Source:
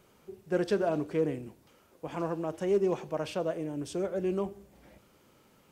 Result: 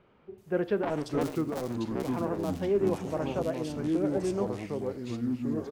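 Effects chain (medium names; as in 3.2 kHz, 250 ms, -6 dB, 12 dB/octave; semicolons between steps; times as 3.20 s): 0.83–1.37 s: cycle switcher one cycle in 2, muted; bands offset in time lows, highs 380 ms, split 3.3 kHz; ever faster or slower copies 472 ms, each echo -4 st, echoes 3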